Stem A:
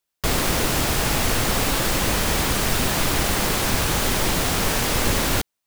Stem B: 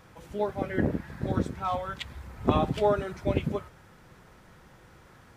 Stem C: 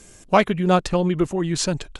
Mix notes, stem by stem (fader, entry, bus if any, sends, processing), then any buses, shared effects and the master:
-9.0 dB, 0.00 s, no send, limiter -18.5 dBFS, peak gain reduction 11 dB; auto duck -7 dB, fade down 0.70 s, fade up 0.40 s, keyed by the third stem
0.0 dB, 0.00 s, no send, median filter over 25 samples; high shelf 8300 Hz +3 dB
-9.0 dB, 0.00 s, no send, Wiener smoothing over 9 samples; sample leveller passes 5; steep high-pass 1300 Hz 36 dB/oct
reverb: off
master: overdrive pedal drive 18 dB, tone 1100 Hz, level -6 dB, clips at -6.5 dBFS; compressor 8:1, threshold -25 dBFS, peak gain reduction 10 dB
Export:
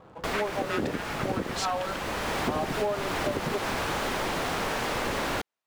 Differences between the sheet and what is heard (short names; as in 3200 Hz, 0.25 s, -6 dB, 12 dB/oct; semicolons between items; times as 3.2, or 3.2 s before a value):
stem A: missing limiter -18.5 dBFS, peak gain reduction 11 dB; stem C -9.0 dB -> -19.0 dB